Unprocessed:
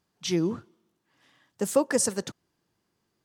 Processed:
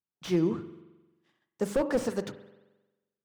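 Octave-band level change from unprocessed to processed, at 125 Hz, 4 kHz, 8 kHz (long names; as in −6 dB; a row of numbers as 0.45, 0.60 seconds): −0.5, −8.5, −17.0 decibels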